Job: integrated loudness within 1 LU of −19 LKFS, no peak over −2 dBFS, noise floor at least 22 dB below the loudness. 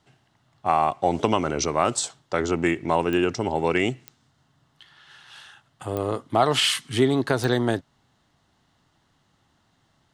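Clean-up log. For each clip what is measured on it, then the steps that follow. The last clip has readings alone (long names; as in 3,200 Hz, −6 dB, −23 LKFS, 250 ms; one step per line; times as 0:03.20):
number of clicks 4; integrated loudness −23.5 LKFS; sample peak −4.0 dBFS; target loudness −19.0 LKFS
→ click removal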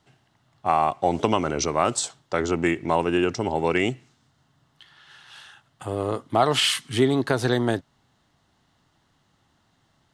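number of clicks 0; integrated loudness −23.5 LKFS; sample peak −4.0 dBFS; target loudness −19.0 LKFS
→ level +4.5 dB
brickwall limiter −2 dBFS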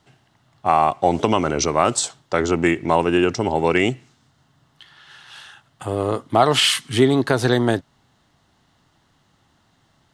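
integrated loudness −19.5 LKFS; sample peak −2.0 dBFS; background noise floor −63 dBFS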